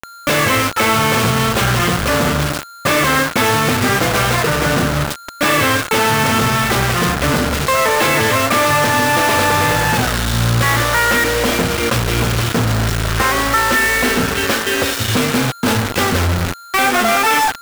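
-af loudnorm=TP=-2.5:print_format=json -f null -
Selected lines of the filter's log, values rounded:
"input_i" : "-14.9",
"input_tp" : "-3.9",
"input_lra" : "1.6",
"input_thresh" : "-24.9",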